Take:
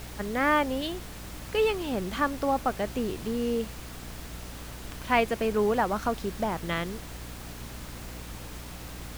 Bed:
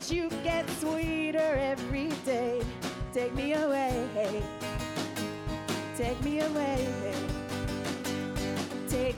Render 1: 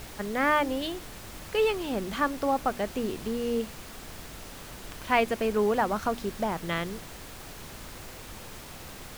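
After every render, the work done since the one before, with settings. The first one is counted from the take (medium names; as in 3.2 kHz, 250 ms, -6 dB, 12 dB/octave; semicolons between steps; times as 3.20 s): de-hum 60 Hz, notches 5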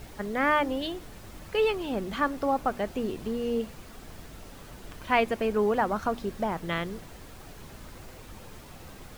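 noise reduction 7 dB, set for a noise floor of -44 dBFS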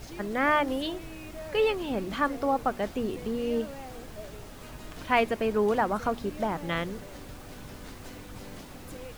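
add bed -14 dB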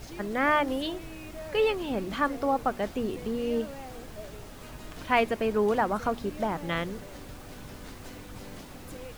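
no audible change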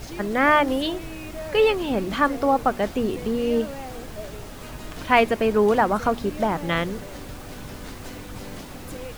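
trim +6.5 dB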